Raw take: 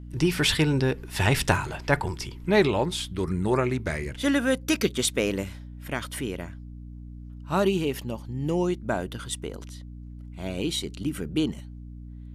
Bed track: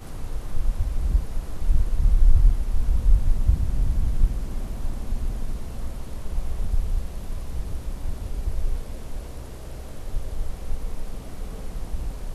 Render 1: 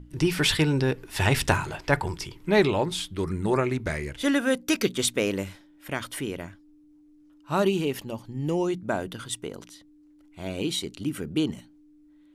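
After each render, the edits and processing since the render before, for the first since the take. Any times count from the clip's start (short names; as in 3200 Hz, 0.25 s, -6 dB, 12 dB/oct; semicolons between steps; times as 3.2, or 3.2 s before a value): notches 60/120/180/240 Hz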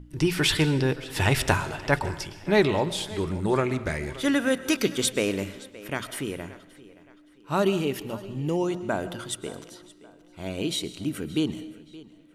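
tape echo 0.573 s, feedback 41%, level -18 dB, low-pass 5800 Hz; digital reverb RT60 0.81 s, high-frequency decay 0.95×, pre-delay 85 ms, DRR 14.5 dB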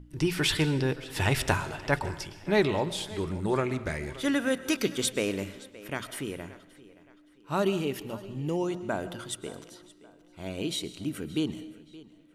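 gain -3.5 dB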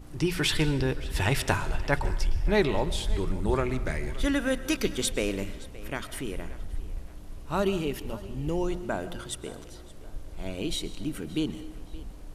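add bed track -11 dB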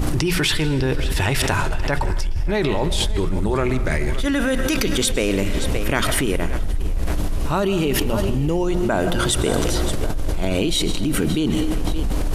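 fast leveller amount 100%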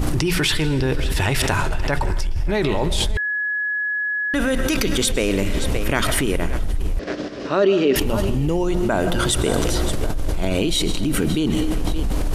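3.17–4.34 bleep 1690 Hz -20 dBFS; 6.99–7.96 speaker cabinet 240–5500 Hz, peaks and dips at 270 Hz +6 dB, 400 Hz +6 dB, 570 Hz +7 dB, 890 Hz -7 dB, 1700 Hz +6 dB, 5200 Hz +4 dB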